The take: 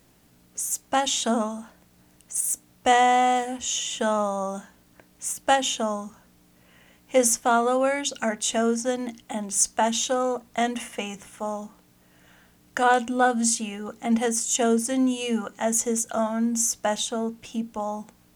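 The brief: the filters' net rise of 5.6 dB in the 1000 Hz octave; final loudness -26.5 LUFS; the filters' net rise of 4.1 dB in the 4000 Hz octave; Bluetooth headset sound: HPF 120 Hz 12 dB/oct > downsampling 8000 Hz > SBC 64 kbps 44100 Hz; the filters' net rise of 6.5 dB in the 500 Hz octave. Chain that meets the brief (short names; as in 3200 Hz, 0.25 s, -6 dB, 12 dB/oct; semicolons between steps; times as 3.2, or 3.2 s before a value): HPF 120 Hz 12 dB/oct; bell 500 Hz +6 dB; bell 1000 Hz +5 dB; bell 4000 Hz +5 dB; downsampling 8000 Hz; gain -6 dB; SBC 64 kbps 44100 Hz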